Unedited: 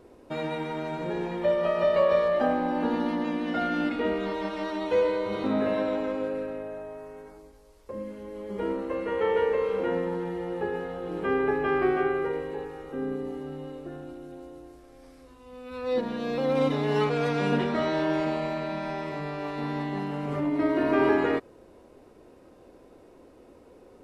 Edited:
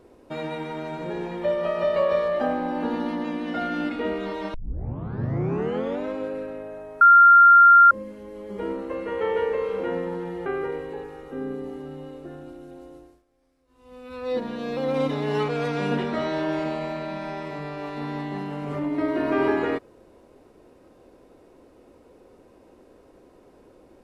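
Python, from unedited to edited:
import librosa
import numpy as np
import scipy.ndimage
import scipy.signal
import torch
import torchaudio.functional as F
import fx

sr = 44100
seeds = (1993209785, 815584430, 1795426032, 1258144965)

y = fx.edit(x, sr, fx.tape_start(start_s=4.54, length_s=1.53),
    fx.bleep(start_s=7.01, length_s=0.9, hz=1390.0, db=-8.5),
    fx.cut(start_s=10.46, length_s=1.61),
    fx.fade_down_up(start_s=14.57, length_s=0.99, db=-17.5, fade_s=0.28), tone=tone)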